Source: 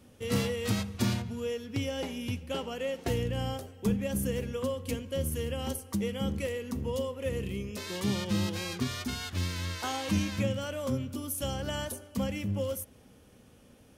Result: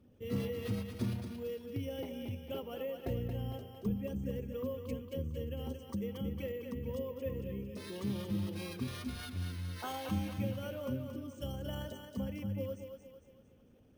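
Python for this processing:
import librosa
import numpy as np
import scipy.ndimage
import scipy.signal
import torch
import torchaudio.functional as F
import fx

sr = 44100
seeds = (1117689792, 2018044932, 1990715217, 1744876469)

p1 = fx.envelope_sharpen(x, sr, power=1.5)
p2 = p1 + fx.echo_thinned(p1, sr, ms=227, feedback_pct=49, hz=320.0, wet_db=-6.0, dry=0)
p3 = np.repeat(scipy.signal.resample_poly(p2, 1, 3), 3)[:len(p2)]
y = F.gain(torch.from_numpy(p3), -6.5).numpy()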